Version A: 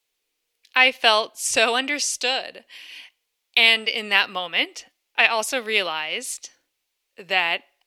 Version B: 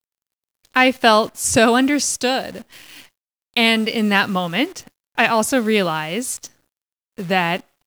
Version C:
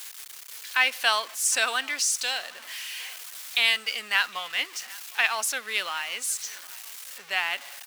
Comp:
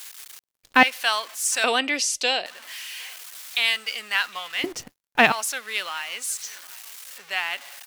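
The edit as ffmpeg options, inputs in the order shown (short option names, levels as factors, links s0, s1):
-filter_complex "[1:a]asplit=2[s0][s1];[2:a]asplit=4[s2][s3][s4][s5];[s2]atrim=end=0.392[s6];[s0]atrim=start=0.388:end=0.832[s7];[s3]atrim=start=0.828:end=1.642[s8];[0:a]atrim=start=1.638:end=2.462[s9];[s4]atrim=start=2.458:end=4.642[s10];[s1]atrim=start=4.638:end=5.322[s11];[s5]atrim=start=5.318[s12];[s6][s7]acrossfade=d=0.004:c1=hsin:c2=hsin[s13];[s13][s8]acrossfade=d=0.004:c1=hsin:c2=hsin[s14];[s14][s9]acrossfade=d=0.004:c1=hsin:c2=hsin[s15];[s15][s10]acrossfade=d=0.004:c1=hsin:c2=hsin[s16];[s16][s11]acrossfade=d=0.004:c1=hsin:c2=hsin[s17];[s17][s12]acrossfade=d=0.004:c1=hsin:c2=hsin"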